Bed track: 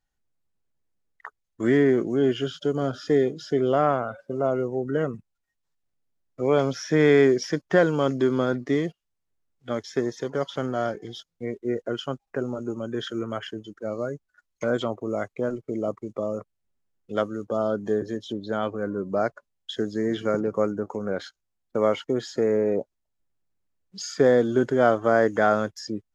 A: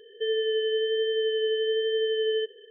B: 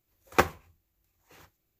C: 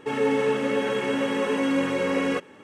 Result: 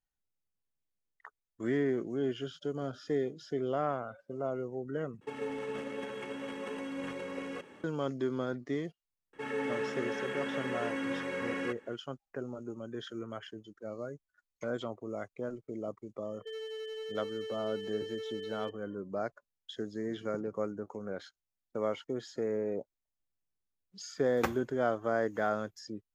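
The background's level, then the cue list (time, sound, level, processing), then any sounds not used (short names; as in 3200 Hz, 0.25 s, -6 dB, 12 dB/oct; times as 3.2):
bed track -11 dB
5.21 replace with C -17 dB + transient shaper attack +7 dB, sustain +12 dB
9.33 add C -12.5 dB + bell 1700 Hz +7 dB 0.76 oct
16.25 add A -14 dB + hard clip -23.5 dBFS
24.05 add B -10.5 dB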